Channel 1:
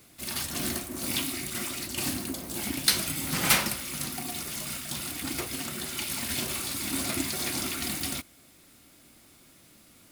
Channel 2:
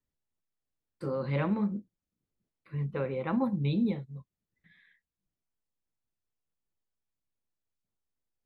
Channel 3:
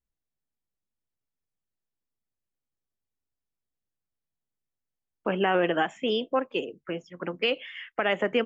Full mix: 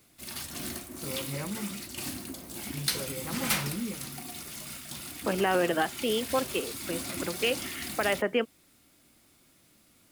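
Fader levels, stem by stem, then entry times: -6.0 dB, -7.0 dB, -2.0 dB; 0.00 s, 0.00 s, 0.00 s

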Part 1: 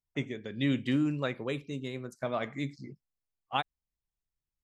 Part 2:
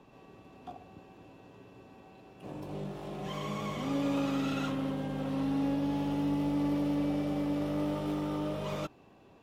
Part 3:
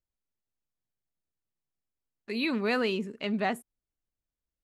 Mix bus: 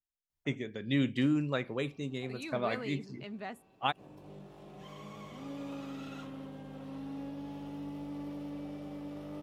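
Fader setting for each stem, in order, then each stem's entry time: -0.5 dB, -11.0 dB, -13.0 dB; 0.30 s, 1.55 s, 0.00 s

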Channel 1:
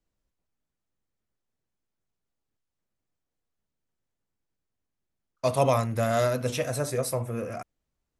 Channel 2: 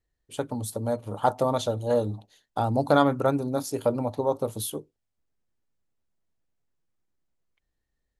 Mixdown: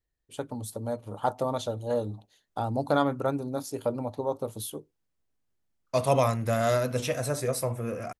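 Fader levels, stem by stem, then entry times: -0.5 dB, -4.5 dB; 0.50 s, 0.00 s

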